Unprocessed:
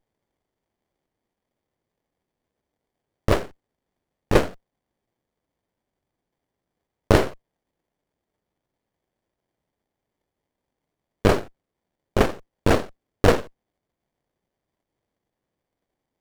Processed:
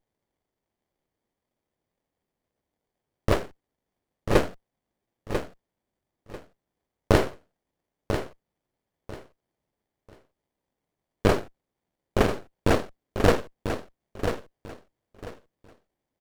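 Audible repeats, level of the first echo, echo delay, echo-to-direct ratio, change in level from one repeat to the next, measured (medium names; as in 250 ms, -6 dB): 3, -8.0 dB, 993 ms, -8.0 dB, -13.0 dB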